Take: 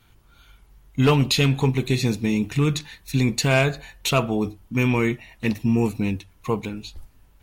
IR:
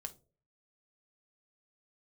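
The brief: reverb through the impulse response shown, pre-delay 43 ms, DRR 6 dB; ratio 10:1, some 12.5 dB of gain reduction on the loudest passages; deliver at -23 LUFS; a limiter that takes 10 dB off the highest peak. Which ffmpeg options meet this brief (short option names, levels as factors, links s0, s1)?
-filter_complex "[0:a]acompressor=threshold=0.0447:ratio=10,alimiter=level_in=1.19:limit=0.0631:level=0:latency=1,volume=0.841,asplit=2[s0][s1];[1:a]atrim=start_sample=2205,adelay=43[s2];[s1][s2]afir=irnorm=-1:irlink=0,volume=0.75[s3];[s0][s3]amix=inputs=2:normalize=0,volume=3.98"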